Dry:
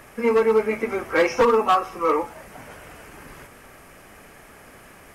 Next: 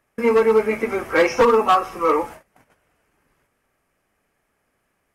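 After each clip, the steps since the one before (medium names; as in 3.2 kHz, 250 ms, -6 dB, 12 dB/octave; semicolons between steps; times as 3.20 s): gate -37 dBFS, range -26 dB; trim +2.5 dB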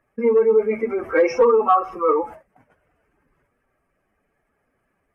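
spectral contrast enhancement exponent 1.7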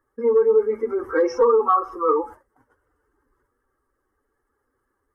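static phaser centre 660 Hz, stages 6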